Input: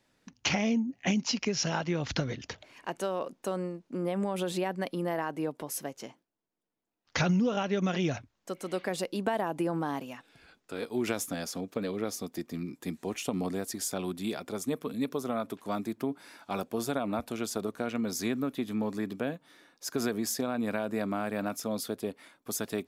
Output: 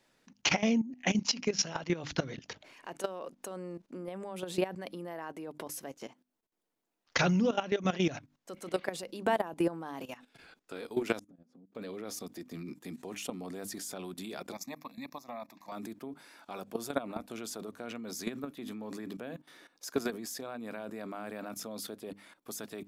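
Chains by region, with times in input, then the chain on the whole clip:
11.19–11.75 s: band-pass filter 210 Hz, Q 2.4 + compression 8:1, threshold -53 dBFS
14.52–15.72 s: high-pass 390 Hz 6 dB/octave + static phaser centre 2.1 kHz, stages 8
whole clip: peaking EQ 68 Hz -8 dB 2 oct; hum notches 50/100/150/200/250/300 Hz; level held to a coarse grid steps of 15 dB; trim +4 dB

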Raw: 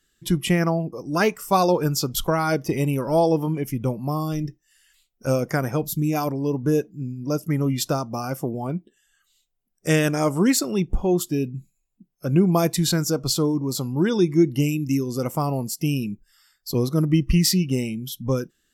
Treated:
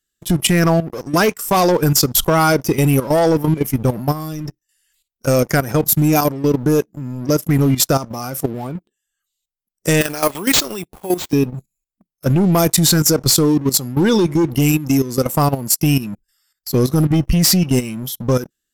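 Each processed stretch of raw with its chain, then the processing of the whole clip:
10.01–11.33 s: high-pass 670 Hz 6 dB/octave + careless resampling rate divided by 4×, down none, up hold
whole clip: treble shelf 6.2 kHz +10 dB; waveshaping leveller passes 3; level held to a coarse grid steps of 13 dB

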